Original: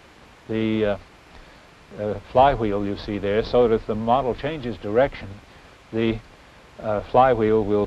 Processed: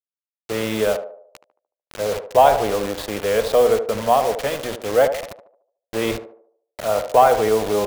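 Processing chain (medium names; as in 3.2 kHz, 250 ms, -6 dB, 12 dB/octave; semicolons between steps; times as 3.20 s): resonant low shelf 400 Hz -6 dB, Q 1.5; hum notches 60/120/180/240 Hz; in parallel at -3 dB: compression 5:1, threshold -27 dBFS, peak gain reduction 16 dB; on the sum: bit crusher 5-bit; band-passed feedback delay 74 ms, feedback 47%, band-pass 580 Hz, level -8 dB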